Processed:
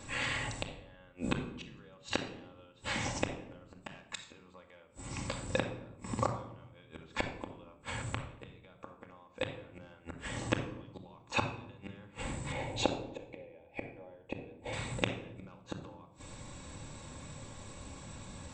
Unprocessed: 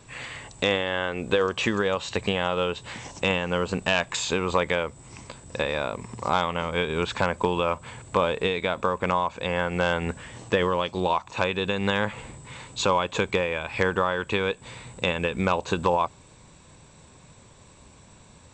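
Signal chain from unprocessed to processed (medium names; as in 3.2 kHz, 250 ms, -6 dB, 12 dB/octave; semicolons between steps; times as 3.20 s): 12.52–14.73 s: FFT filter 120 Hz 0 dB, 200 Hz -8 dB, 320 Hz +5 dB, 780 Hz +9 dB, 1.2 kHz -14 dB, 2.2 kHz -1 dB, 4.7 kHz -13 dB, 9.3 kHz -10 dB; inverted gate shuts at -17 dBFS, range -36 dB; simulated room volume 2300 m³, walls furnished, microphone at 2.3 m; trim +1 dB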